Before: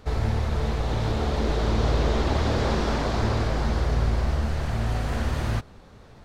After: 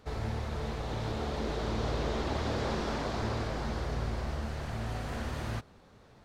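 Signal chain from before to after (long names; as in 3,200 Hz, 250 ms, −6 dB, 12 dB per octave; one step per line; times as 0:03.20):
low-shelf EQ 69 Hz −9 dB
level −7 dB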